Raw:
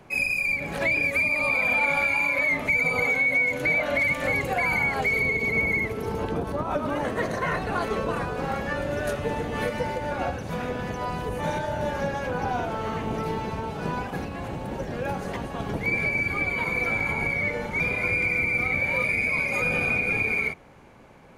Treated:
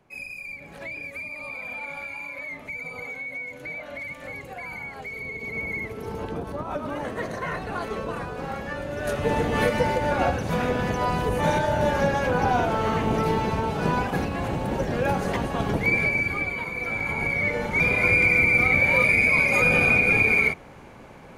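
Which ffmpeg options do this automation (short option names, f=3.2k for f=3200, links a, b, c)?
-af "volume=16.5dB,afade=t=in:st=5.14:d=1:silence=0.375837,afade=t=in:st=8.96:d=0.41:silence=0.354813,afade=t=out:st=15.58:d=1.14:silence=0.281838,afade=t=in:st=16.72:d=1.39:silence=0.281838"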